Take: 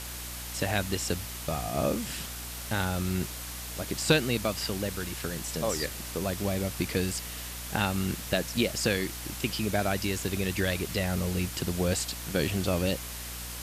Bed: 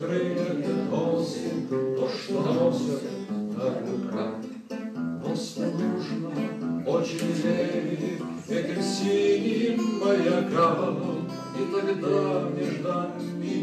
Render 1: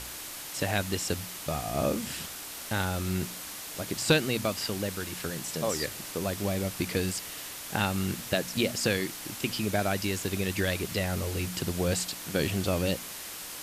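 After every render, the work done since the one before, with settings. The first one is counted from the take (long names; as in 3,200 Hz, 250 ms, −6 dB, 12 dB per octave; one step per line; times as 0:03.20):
hum removal 60 Hz, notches 4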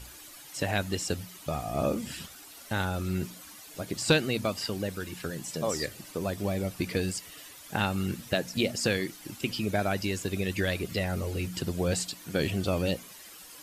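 broadband denoise 12 dB, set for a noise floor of −41 dBFS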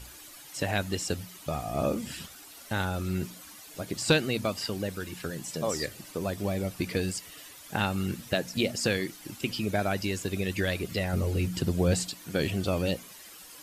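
0:11.13–0:12.10: low-shelf EQ 380 Hz +5.5 dB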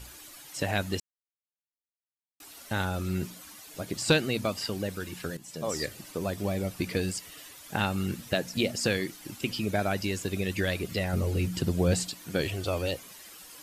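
0:01.00–0:02.40: silence
0:05.37–0:05.80: fade in, from −12.5 dB
0:12.41–0:13.05: parametric band 200 Hz −14 dB 0.61 octaves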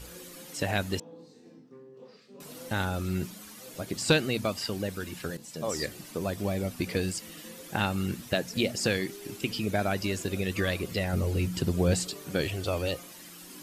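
mix in bed −23.5 dB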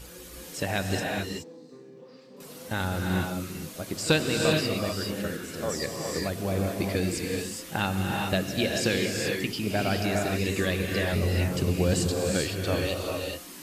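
backwards echo 36 ms −20.5 dB
reverb whose tail is shaped and stops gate 450 ms rising, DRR 0 dB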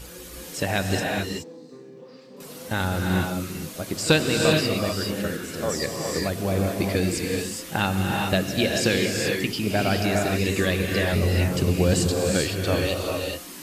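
level +4 dB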